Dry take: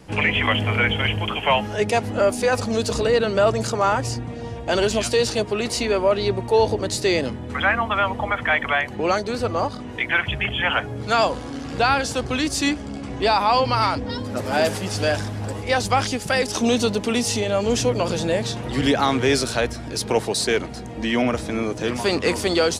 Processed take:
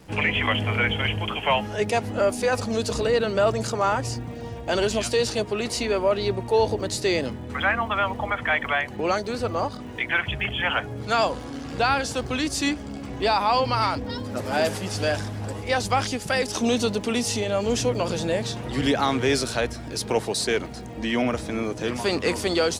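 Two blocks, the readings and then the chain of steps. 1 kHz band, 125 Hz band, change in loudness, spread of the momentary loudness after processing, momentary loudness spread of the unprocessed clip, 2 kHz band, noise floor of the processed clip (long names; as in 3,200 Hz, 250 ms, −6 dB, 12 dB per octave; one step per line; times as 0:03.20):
−3.0 dB, −3.0 dB, −3.0 dB, 6 LU, 6 LU, −3.0 dB, −36 dBFS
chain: surface crackle 180 per second −42 dBFS
level −3 dB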